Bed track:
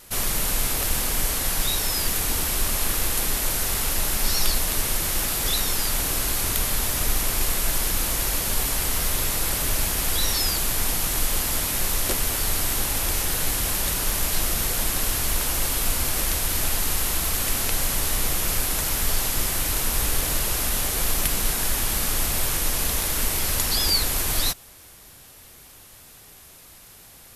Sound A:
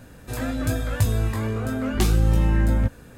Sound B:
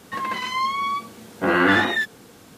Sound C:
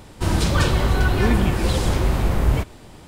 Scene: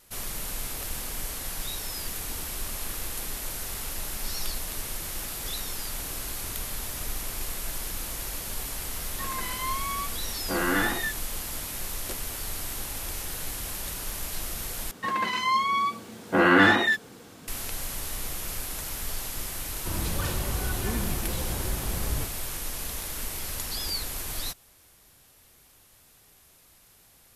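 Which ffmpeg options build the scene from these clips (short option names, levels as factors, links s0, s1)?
-filter_complex "[2:a]asplit=2[s0][s1];[0:a]volume=0.316,asplit=2[s2][s3];[s2]atrim=end=14.914[s4];[s1]atrim=end=2.57,asetpts=PTS-STARTPTS,volume=0.944[s5];[s3]atrim=start=17.476[s6];[s0]atrim=end=2.57,asetpts=PTS-STARTPTS,volume=0.376,afade=t=in:d=0.004:c=hsin,afade=t=out:st=2.566:d=0.004:c=hsin,adelay=9070[s7];[3:a]atrim=end=3.07,asetpts=PTS-STARTPTS,volume=0.237,afade=t=in:d=0.004:c=hsin,afade=t=out:st=3.066:d=0.004:c=hsin,adelay=19640[s8];[s4][s5]acrossfade=d=0.004:c1=hsin:c2=hsin[s9];[s9][s6]acrossfade=d=0.004:c1=hsin:c2=hsin[s10];[s10][s7][s8]amix=inputs=3:normalize=0"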